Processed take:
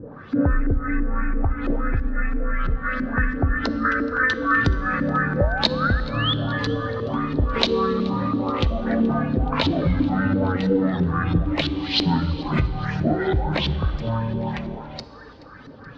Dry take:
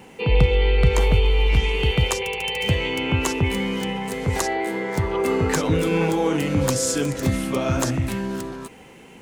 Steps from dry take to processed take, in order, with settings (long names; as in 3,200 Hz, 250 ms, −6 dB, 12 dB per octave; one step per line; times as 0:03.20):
sound drawn into the spectrogram rise, 0:03.11–0:03.68, 940–6,700 Hz −32 dBFS
downward compressor 6 to 1, threshold −22 dBFS, peak gain reduction 11 dB
reverb reduction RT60 1.2 s
auto-filter low-pass saw up 5.2 Hz 550–7,900 Hz
feedback echo with a high-pass in the loop 246 ms, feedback 55%, level −21.5 dB
feedback delay network reverb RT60 2.7 s, high-frequency decay 0.6×, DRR 12 dB
wrong playback speed 78 rpm record played at 45 rpm
level +5.5 dB